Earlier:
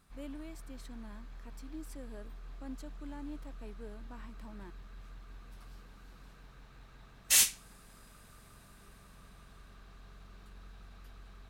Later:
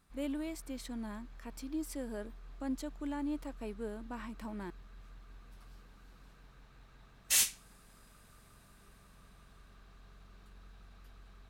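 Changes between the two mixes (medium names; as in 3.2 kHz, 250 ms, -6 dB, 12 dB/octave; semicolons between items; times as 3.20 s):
speech +8.0 dB; background -3.5 dB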